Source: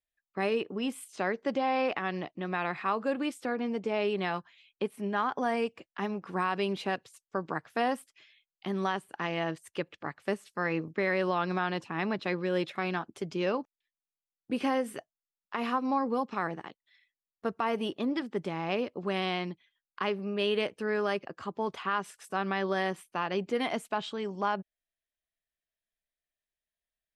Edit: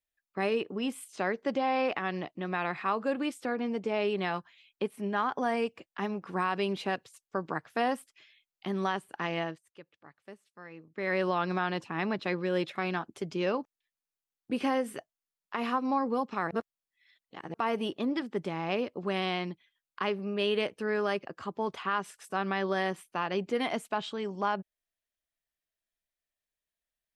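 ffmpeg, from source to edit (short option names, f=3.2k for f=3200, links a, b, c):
-filter_complex "[0:a]asplit=5[a][b][c][d][e];[a]atrim=end=9.62,asetpts=PTS-STARTPTS,afade=t=out:st=9.39:d=0.23:silence=0.141254[f];[b]atrim=start=9.62:end=10.91,asetpts=PTS-STARTPTS,volume=-17dB[g];[c]atrim=start=10.91:end=16.512,asetpts=PTS-STARTPTS,afade=t=in:d=0.23:silence=0.141254[h];[d]atrim=start=16.508:end=17.542,asetpts=PTS-STARTPTS,areverse[i];[e]atrim=start=17.538[j];[f][g][h]concat=n=3:v=0:a=1[k];[k][i]acrossfade=d=0.004:c1=hsin:c2=hsin[l];[l][j]acrossfade=d=0.004:c1=hsin:c2=hsin"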